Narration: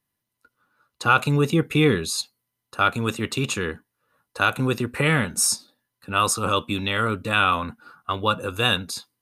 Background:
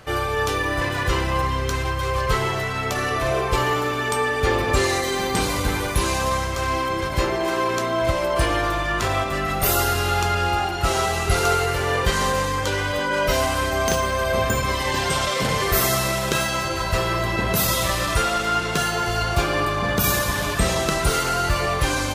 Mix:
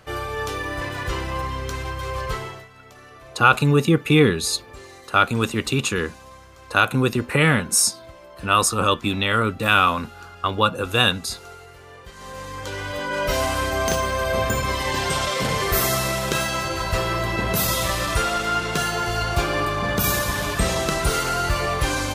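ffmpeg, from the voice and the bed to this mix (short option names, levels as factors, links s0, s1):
-filter_complex "[0:a]adelay=2350,volume=1.41[s0];[1:a]volume=6.31,afade=t=out:st=2.24:d=0.44:silence=0.141254,afade=t=in:st=12.15:d=1.34:silence=0.0891251[s1];[s0][s1]amix=inputs=2:normalize=0"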